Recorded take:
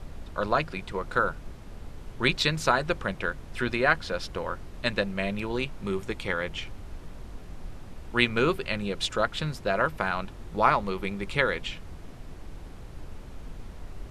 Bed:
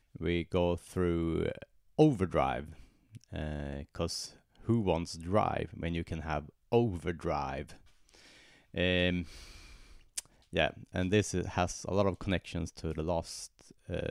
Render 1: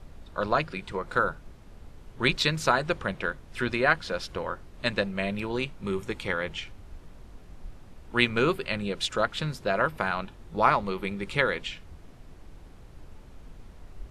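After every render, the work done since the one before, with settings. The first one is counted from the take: noise print and reduce 6 dB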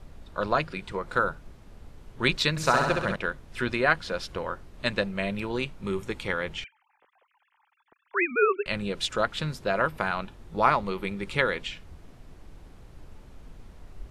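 2.5–3.16 flutter echo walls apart 11.3 m, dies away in 1 s; 6.64–8.66 sine-wave speech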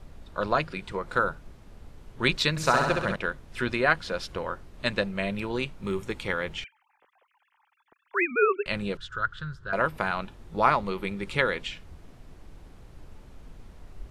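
5.79–8.26 short-mantissa float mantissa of 6-bit; 8.97–9.73 EQ curve 130 Hz 0 dB, 250 Hz -21 dB, 380 Hz -12 dB, 770 Hz -21 dB, 1500 Hz +5 dB, 2300 Hz -23 dB, 3200 Hz -11 dB, 5100 Hz -16 dB, 8100 Hz -20 dB, 12000 Hz -27 dB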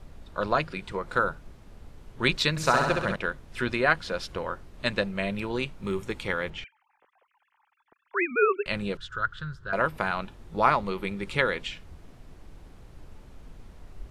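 6.5–8.32 LPF 2800 Hz 6 dB/oct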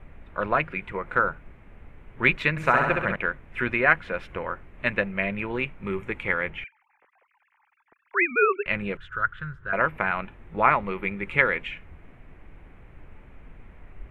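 resonant high shelf 3300 Hz -13.5 dB, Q 3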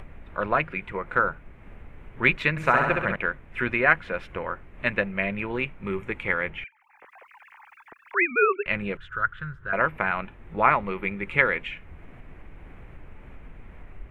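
upward compressor, threshold -36 dBFS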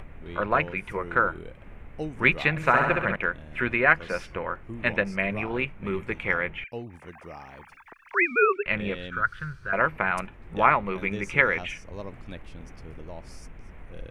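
add bed -9.5 dB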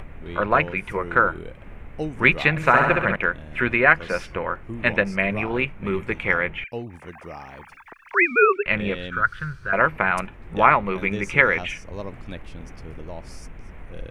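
gain +4.5 dB; limiter -1 dBFS, peak gain reduction 1.5 dB

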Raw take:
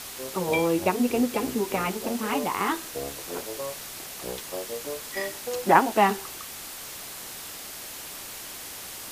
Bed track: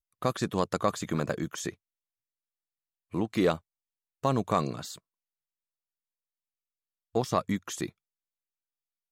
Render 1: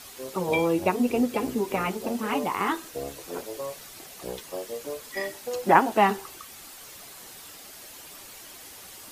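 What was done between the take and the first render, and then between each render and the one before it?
denoiser 8 dB, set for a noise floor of -40 dBFS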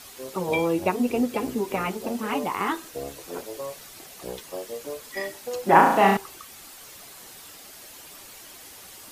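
5.69–6.17 flutter echo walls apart 6.1 m, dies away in 0.7 s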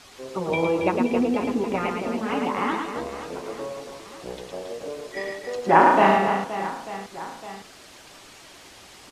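air absorption 73 m; reverse bouncing-ball echo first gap 0.11 s, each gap 1.5×, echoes 5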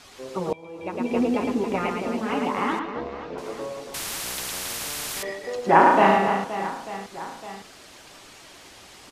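0.53–1.21 fade in quadratic, from -23 dB; 2.79–3.38 air absorption 220 m; 3.94–5.23 spectral compressor 10:1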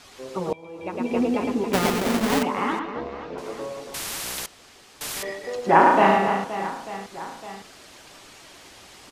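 1.73–2.43 half-waves squared off; 4.46–5.01 room tone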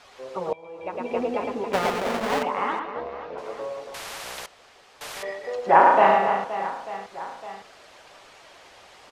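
LPF 2700 Hz 6 dB/oct; resonant low shelf 400 Hz -7.5 dB, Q 1.5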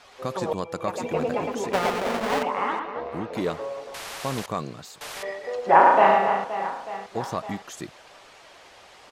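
add bed track -3 dB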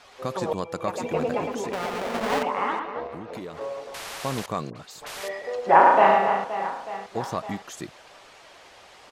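1.45–2.15 compressor, threshold -25 dBFS; 3.06–3.61 compressor 12:1, threshold -32 dBFS; 4.7–5.42 dispersion highs, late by 57 ms, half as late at 1500 Hz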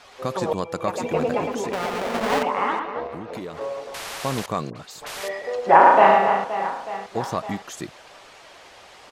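gain +3 dB; limiter -1 dBFS, peak gain reduction 2 dB

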